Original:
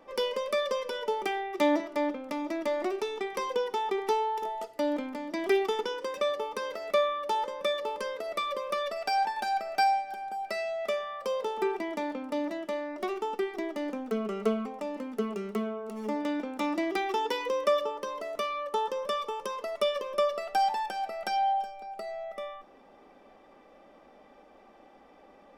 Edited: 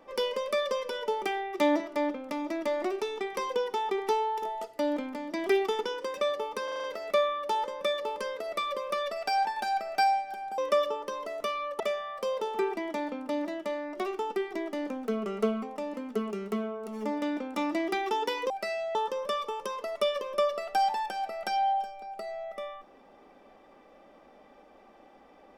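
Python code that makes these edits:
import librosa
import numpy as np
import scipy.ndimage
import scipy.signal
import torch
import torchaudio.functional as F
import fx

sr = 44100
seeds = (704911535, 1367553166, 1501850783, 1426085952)

y = fx.edit(x, sr, fx.stutter(start_s=6.64, slice_s=0.04, count=6),
    fx.swap(start_s=10.38, length_s=0.45, other_s=17.53, other_length_s=1.22), tone=tone)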